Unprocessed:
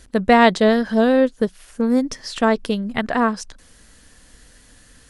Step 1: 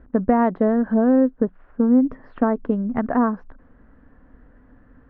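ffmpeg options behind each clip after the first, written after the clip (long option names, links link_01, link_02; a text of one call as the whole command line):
ffmpeg -i in.wav -af "acompressor=threshold=-17dB:ratio=3,lowpass=frequency=1400:width=0.5412,lowpass=frequency=1400:width=1.3066,equalizer=frequency=260:width=3.9:gain=7" out.wav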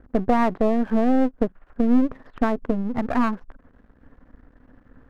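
ffmpeg -i in.wav -af "aeval=exprs='if(lt(val(0),0),0.251*val(0),val(0))':channel_layout=same,volume=2dB" out.wav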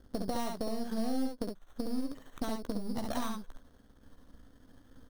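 ffmpeg -i in.wav -af "acompressor=threshold=-24dB:ratio=6,acrusher=samples=9:mix=1:aa=0.000001,aecho=1:1:15|58|68:0.251|0.335|0.596,volume=-8dB" out.wav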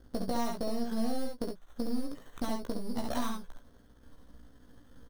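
ffmpeg -i in.wav -filter_complex "[0:a]asplit=2[link_01][link_02];[link_02]adelay=17,volume=-5dB[link_03];[link_01][link_03]amix=inputs=2:normalize=0" out.wav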